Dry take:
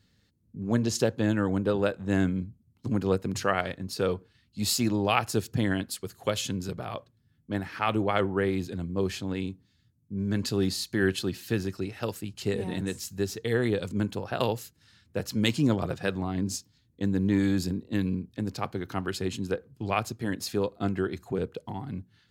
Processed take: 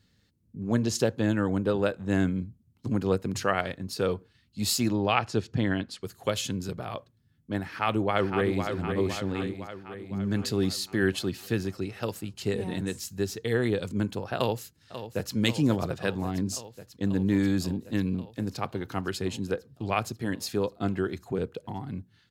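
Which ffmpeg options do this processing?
-filter_complex "[0:a]asettb=1/sr,asplit=3[a][b][c];[a]atrim=end=4.934[d];[b]atrim=start=4.93:end=6.03,asetpts=PTS-STARTPTS,afade=t=in:d=0.004:c=qsin,afade=t=out:st=1.096:d=0.004:c=qsin,lowpass=4.7k[e];[c]atrim=start=6.026[f];[d][e]acrossfade=d=0.004:c1=hsin:c2=qsin[g];[g][f]acrossfade=d=0.004:c1=qsin:c2=hsin,asplit=2[h][i];[i]afade=t=in:st=7.68:d=0.01,afade=t=out:st=8.65:d=0.01,aecho=0:1:510|1020|1530|2040|2550|3060|3570|4080:0.473151|0.283891|0.170334|0.102201|0.0613204|0.0367922|0.0220753|0.0132452[j];[h][j]amix=inputs=2:normalize=0,asplit=2[k][l];[l]afade=t=in:st=14.36:d=0.01,afade=t=out:st=15.34:d=0.01,aecho=0:1:540|1080|1620|2160|2700|3240|3780|4320|4860|5400|5940|6480:0.266073|0.212858|0.170286|0.136229|0.108983|0.0871866|0.0697493|0.0557994|0.0446396|0.0357116|0.0285693|0.0228555[m];[k][m]amix=inputs=2:normalize=0"

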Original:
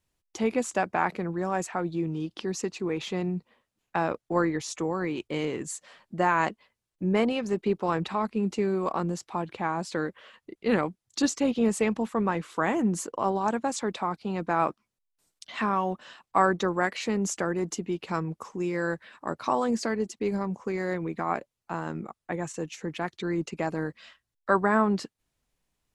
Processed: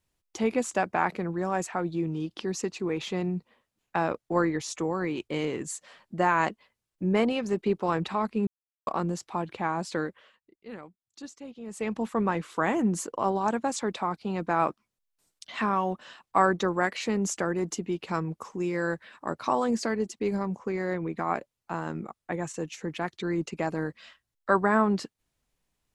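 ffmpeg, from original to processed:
-filter_complex "[0:a]asettb=1/sr,asplit=3[a][b][c];[a]atrim=end=20.594[d];[b]atrim=start=20.59:end=21.17,asetpts=PTS-STARTPTS,afade=t=in:d=0.004:c=qsin,afade=t=out:st=0.576:d=0.004:c=qsin,highshelf=f=4.6k:g=-7[e];[c]atrim=start=21.166[f];[d][e]acrossfade=d=0.004:c1=hsin:c2=qsin[g];[g][f]acrossfade=d=0.004:c1=qsin:c2=hsin,asplit=5[h][i][j][k][l];[h]atrim=end=8.47,asetpts=PTS-STARTPTS,afade=t=out:st=8.466:d=0.004:c=hsin[m];[i]atrim=start=8.47:end=8.87,asetpts=PTS-STARTPTS,volume=0[n];[j]atrim=start=8.87:end=10.41,asetpts=PTS-STARTPTS,afade=t=in:d=0.004:c=hsin,afade=t=out:st=1.11:d=0.43:silence=0.133352[o];[k]atrim=start=10.41:end=11.66,asetpts=PTS-STARTPTS,volume=-17.5dB[p];[l]atrim=start=11.66,asetpts=PTS-STARTPTS,afade=t=in:d=0.43:silence=0.133352[q];[m][n][o][p][q]concat=n=5:v=0:a=1"

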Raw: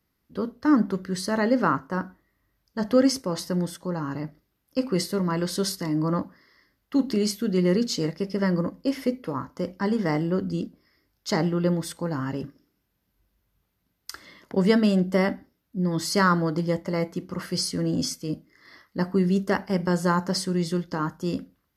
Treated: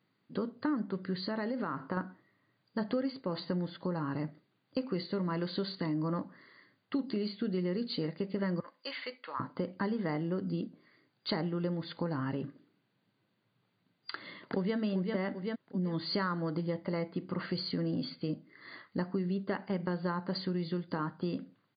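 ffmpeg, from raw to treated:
-filter_complex "[0:a]asettb=1/sr,asplit=3[a][b][c];[a]atrim=end=1.174[d];[b]atrim=start=1.17:end=1.97,asetpts=PTS-STARTPTS,afade=t=in:d=0.004:c=qsin,afade=t=out:st=0.796:d=0.004:c=qsin,acompressor=threshold=-28dB:ratio=6:attack=3.2:release=140:knee=1:detection=peak[e];[c]atrim=start=1.966[f];[d][e]acrossfade=d=0.004:c1=hsin:c2=qsin[g];[g][f]acrossfade=d=0.004:c1=qsin:c2=hsin,asettb=1/sr,asplit=3[h][i][j];[h]atrim=end=8.604[k];[i]atrim=start=8.6:end=9.4,asetpts=PTS-STARTPTS,afade=t=in:d=0.004:c=qsin,afade=t=out:st=0.796:d=0.004:c=qsin,highpass=1.3k[l];[j]atrim=start=9.396[m];[k][l]acrossfade=d=0.004:c1=hsin:c2=qsin[n];[n][m]acrossfade=d=0.004:c1=qsin:c2=hsin,asplit=2[o][p];[p]afade=t=in:st=14.13:d=0.01,afade=t=out:st=14.77:d=0.01,aecho=0:1:390|780|1170|1560:0.562341|0.196819|0.0688868|0.0241104[q];[o][q]amix=inputs=2:normalize=0,afftfilt=real='re*between(b*sr/4096,100,4800)':imag='im*between(b*sr/4096,100,4800)':win_size=4096:overlap=0.75,acompressor=threshold=-33dB:ratio=5,volume=1.5dB"

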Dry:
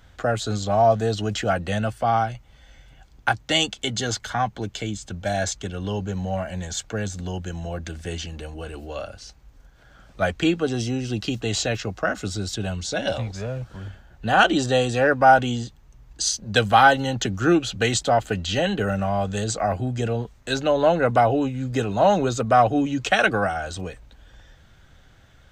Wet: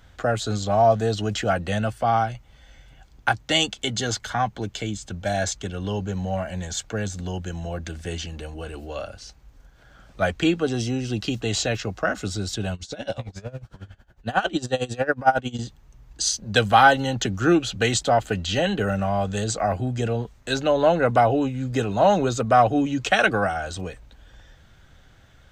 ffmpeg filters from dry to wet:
-filter_complex "[0:a]asettb=1/sr,asplit=3[a][b][c];[a]atrim=end=12.744[d];[b]atrim=start=12.74:end=15.59,asetpts=PTS-STARTPTS,afade=t=in:d=0.004:c=qsin,afade=t=out:st=2.846:d=0.004:c=qsin,aeval=exprs='val(0)*pow(10,-21*(0.5-0.5*cos(2*PI*11*n/s))/20)':c=same[e];[c]atrim=start=15.586[f];[d][e]acrossfade=d=0.004:c1=hsin:c2=qsin[g];[g][f]acrossfade=d=0.004:c1=qsin:c2=hsin"

